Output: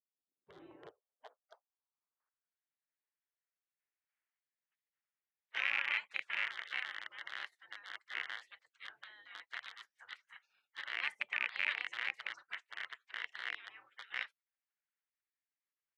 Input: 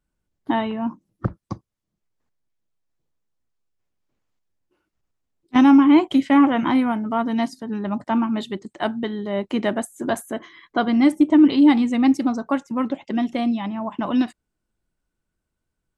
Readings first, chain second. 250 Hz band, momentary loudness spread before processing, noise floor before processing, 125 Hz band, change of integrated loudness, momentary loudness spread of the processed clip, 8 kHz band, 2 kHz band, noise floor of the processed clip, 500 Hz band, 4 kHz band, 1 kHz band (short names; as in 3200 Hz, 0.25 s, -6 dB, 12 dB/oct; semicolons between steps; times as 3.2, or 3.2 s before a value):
under -40 dB, 16 LU, -81 dBFS, under -40 dB, -19.5 dB, 18 LU, n/a, -5.0 dB, under -85 dBFS, -35.0 dB, -9.5 dB, -25.5 dB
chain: rattling part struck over -26 dBFS, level -11 dBFS; spectral gate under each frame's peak -25 dB weak; band-pass sweep 210 Hz -> 1900 Hz, 0.04–2.7; gain -3 dB